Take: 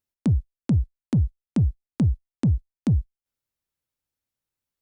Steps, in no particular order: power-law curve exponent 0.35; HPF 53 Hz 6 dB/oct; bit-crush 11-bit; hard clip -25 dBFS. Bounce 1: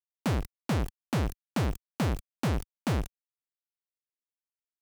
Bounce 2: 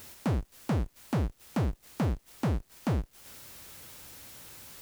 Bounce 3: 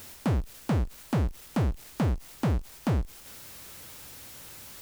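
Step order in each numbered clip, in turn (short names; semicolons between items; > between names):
bit-crush > power-law curve > hard clip > HPF; hard clip > power-law curve > HPF > bit-crush; hard clip > HPF > power-law curve > bit-crush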